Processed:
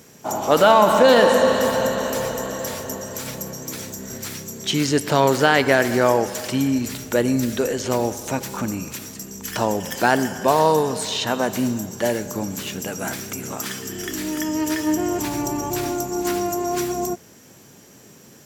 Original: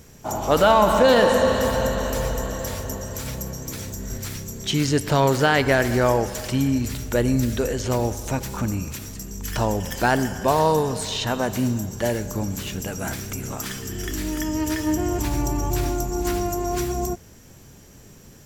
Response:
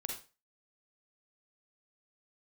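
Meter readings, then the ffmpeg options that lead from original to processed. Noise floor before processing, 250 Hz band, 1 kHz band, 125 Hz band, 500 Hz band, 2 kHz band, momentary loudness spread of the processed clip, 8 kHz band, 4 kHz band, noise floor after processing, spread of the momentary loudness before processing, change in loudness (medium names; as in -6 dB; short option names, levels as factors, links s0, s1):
-47 dBFS, +1.5 dB, +2.5 dB, -4.5 dB, +2.5 dB, +2.5 dB, 14 LU, +2.5 dB, +2.5 dB, -48 dBFS, 13 LU, +2.0 dB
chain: -af "highpass=180,volume=1.33"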